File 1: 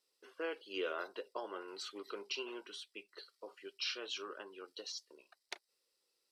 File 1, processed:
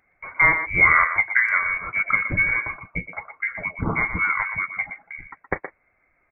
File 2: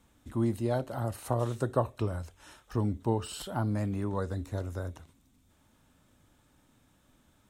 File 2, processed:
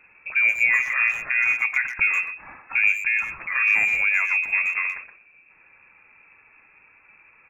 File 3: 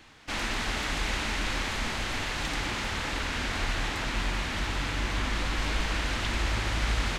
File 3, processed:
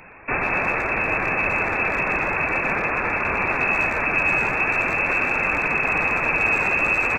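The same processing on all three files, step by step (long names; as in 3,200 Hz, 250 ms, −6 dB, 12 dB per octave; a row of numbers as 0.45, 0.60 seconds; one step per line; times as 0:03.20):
low-shelf EQ 78 Hz −6 dB
brickwall limiter −23.5 dBFS
flanger 0.45 Hz, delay 1.6 ms, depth 7.2 ms, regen −37%
voice inversion scrambler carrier 2,600 Hz
far-end echo of a speakerphone 120 ms, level −9 dB
loudness normalisation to −20 LKFS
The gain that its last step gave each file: +27.0, +16.0, +14.5 decibels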